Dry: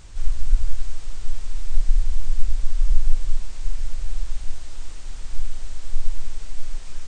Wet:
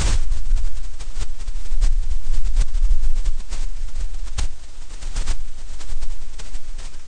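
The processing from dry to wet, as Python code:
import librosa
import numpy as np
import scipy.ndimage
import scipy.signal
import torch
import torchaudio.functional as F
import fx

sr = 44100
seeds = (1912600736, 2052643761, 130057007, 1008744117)

y = fx.pre_swell(x, sr, db_per_s=33.0)
y = F.gain(torch.from_numpy(y), -2.5).numpy()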